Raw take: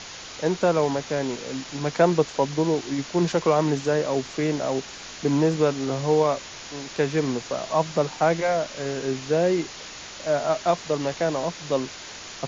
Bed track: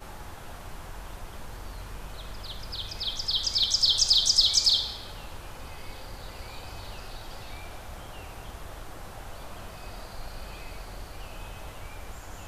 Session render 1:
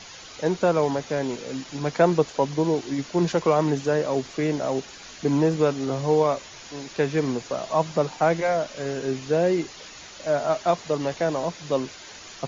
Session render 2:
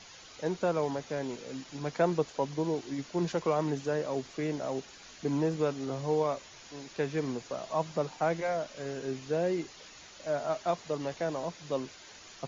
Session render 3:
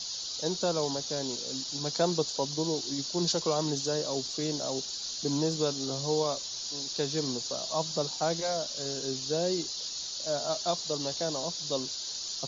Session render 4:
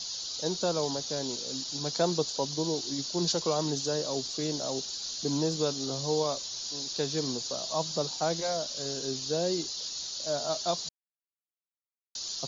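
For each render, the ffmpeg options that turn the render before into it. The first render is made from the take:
ffmpeg -i in.wav -af "afftdn=noise_reduction=7:noise_floor=-40" out.wav
ffmpeg -i in.wav -af "volume=-8.5dB" out.wav
ffmpeg -i in.wav -af "highshelf=frequency=3100:width_type=q:width=3:gain=12" out.wav
ffmpeg -i in.wav -filter_complex "[0:a]asplit=3[link_01][link_02][link_03];[link_01]atrim=end=10.89,asetpts=PTS-STARTPTS,afade=type=out:start_time=10.886:duration=0.004:curve=hsin[link_04];[link_02]atrim=start=10.89:end=12.15,asetpts=PTS-STARTPTS,volume=0[link_05];[link_03]atrim=start=12.15,asetpts=PTS-STARTPTS,afade=type=in:duration=0.004:curve=hsin[link_06];[link_04][link_05][link_06]concat=n=3:v=0:a=1" out.wav

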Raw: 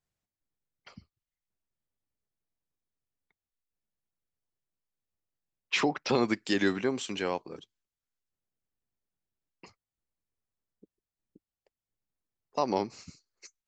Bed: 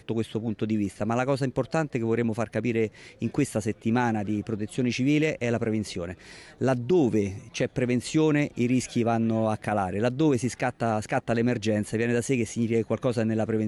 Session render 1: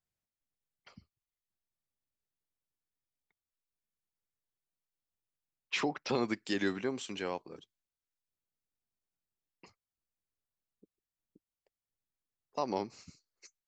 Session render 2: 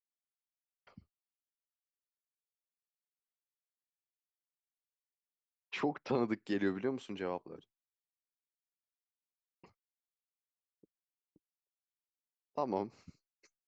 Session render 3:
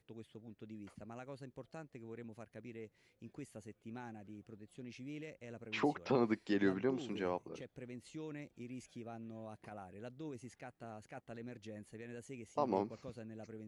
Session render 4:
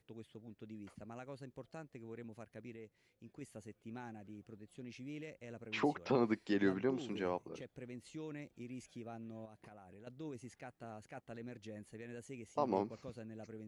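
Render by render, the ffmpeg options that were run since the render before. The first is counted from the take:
ffmpeg -i in.wav -af "volume=-5.5dB" out.wav
ffmpeg -i in.wav -af "agate=range=-33dB:threshold=-59dB:ratio=3:detection=peak,lowpass=frequency=1200:poles=1" out.wav
ffmpeg -i in.wav -i bed.wav -filter_complex "[1:a]volume=-24.5dB[link_01];[0:a][link_01]amix=inputs=2:normalize=0" out.wav
ffmpeg -i in.wav -filter_complex "[0:a]asettb=1/sr,asplit=3[link_01][link_02][link_03];[link_01]atrim=end=9.454[link_04];[link_02]atrim=start=9.45:end=10.07,asetpts=PTS-STARTPTS,afade=type=in:duration=0.004:curve=qsin,afade=type=out:start_time=0.616:duration=0.004:curve=qsin,acompressor=threshold=-52dB:ratio=10:attack=3.2:release=140:knee=1:detection=peak[link_05];[link_03]atrim=start=10.066[link_06];[link_04][link_05]acrossfade=duration=0.004:curve1=hsin:curve2=qsin[link_07];[link_07][link_06]acrossfade=duration=0.004:curve1=qsin:curve2=hsin,asplit=3[link_08][link_09][link_10];[link_08]atrim=end=2.762[link_11];[link_09]atrim=start=2.758:end=3.412,asetpts=PTS-STARTPTS,volume=-3.5dB[link_12];[link_10]atrim=start=3.408[link_13];[link_11][link_12]acrossfade=duration=0.004:curve1=hsin:curve2=hsin[link_14];[link_14][link_13]acrossfade=duration=0.004:curve1=hsin:curve2=hsin" out.wav

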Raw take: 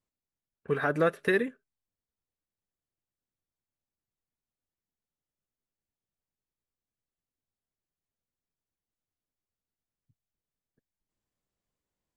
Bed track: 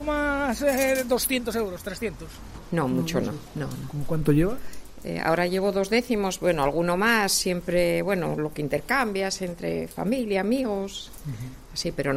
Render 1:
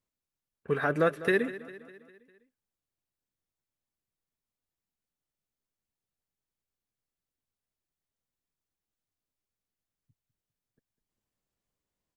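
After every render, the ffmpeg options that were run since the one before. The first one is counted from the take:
ffmpeg -i in.wav -af "aecho=1:1:201|402|603|804|1005:0.158|0.084|0.0445|0.0236|0.0125" out.wav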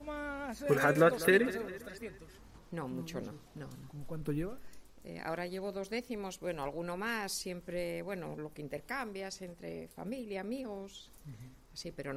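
ffmpeg -i in.wav -i bed.wav -filter_complex "[1:a]volume=-15.5dB[link_01];[0:a][link_01]amix=inputs=2:normalize=0" out.wav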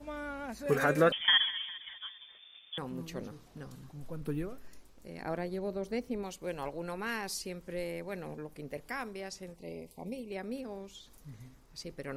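ffmpeg -i in.wav -filter_complex "[0:a]asettb=1/sr,asplit=3[link_01][link_02][link_03];[link_01]atrim=end=1.124[link_04];[link_02]atrim=start=1.12:end=2.78,asetpts=PTS-STARTPTS,afade=type=in:duration=0.004:curve=qsin,afade=type=out:start_time=1.656:duration=0.004:curve=qsin,lowpass=frequency=3100:width_type=q:width=0.5098,lowpass=frequency=3100:width_type=q:width=0.6013,lowpass=frequency=3100:width_type=q:width=0.9,lowpass=frequency=3100:width_type=q:width=2.563,afreqshift=-3600[link_05];[link_03]atrim=start=2.776[link_06];[link_04][link_05]acrossfade=duration=0.004:curve1=hsin:curve2=qsin[link_07];[link_07][link_06]acrossfade=duration=0.004:curve1=qsin:curve2=hsin,asettb=1/sr,asplit=3[link_08][link_09][link_10];[link_08]atrim=end=5.224[link_11];[link_09]atrim=start=5.22:end=6.23,asetpts=PTS-STARTPTS,afade=type=in:duration=0.004:curve=qsin,afade=type=out:start_time=1.006:duration=0.004:curve=qsin,tiltshelf=frequency=930:gain=5[link_12];[link_10]atrim=start=6.226[link_13];[link_11][link_12]acrossfade=duration=0.004:curve1=hsin:curve2=qsin[link_14];[link_14][link_13]acrossfade=duration=0.004:curve1=qsin:curve2=hsin,asettb=1/sr,asplit=3[link_15][link_16][link_17];[link_15]atrim=end=9.564[link_18];[link_16]atrim=start=9.56:end=10.32,asetpts=PTS-STARTPTS,afade=type=in:duration=0.004:curve=qsin,afade=type=out:start_time=0.756:duration=0.004:curve=qsin,asuperstop=centerf=1500:order=8:qfactor=1.5[link_19];[link_17]atrim=start=10.316[link_20];[link_18][link_19]acrossfade=duration=0.004:curve1=hsin:curve2=qsin[link_21];[link_21][link_20]acrossfade=duration=0.004:curve1=qsin:curve2=hsin" out.wav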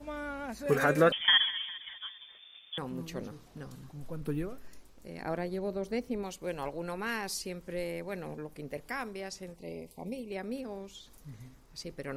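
ffmpeg -i in.wav -af "volume=1.5dB" out.wav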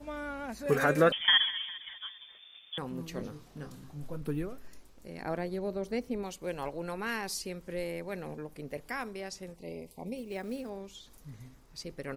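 ffmpeg -i in.wav -filter_complex "[0:a]asplit=3[link_01][link_02][link_03];[link_01]afade=type=out:start_time=3.13:duration=0.02[link_04];[link_02]asplit=2[link_05][link_06];[link_06]adelay=27,volume=-7dB[link_07];[link_05][link_07]amix=inputs=2:normalize=0,afade=type=in:start_time=3.13:duration=0.02,afade=type=out:start_time=4.16:duration=0.02[link_08];[link_03]afade=type=in:start_time=4.16:duration=0.02[link_09];[link_04][link_08][link_09]amix=inputs=3:normalize=0,asettb=1/sr,asplit=3[link_10][link_11][link_12];[link_10]atrim=end=10.164[link_13];[link_11]atrim=start=10.16:end=10.7,asetpts=PTS-STARTPTS,afade=type=in:duration=0.004:curve=qsin,afade=type=out:start_time=0.536:duration=0.004:curve=qsin,acrusher=bits=6:mode=log:mix=0:aa=0.000001[link_14];[link_12]atrim=start=10.696[link_15];[link_13][link_14]acrossfade=duration=0.004:curve1=hsin:curve2=qsin[link_16];[link_16][link_15]acrossfade=duration=0.004:curve1=qsin:curve2=hsin" out.wav

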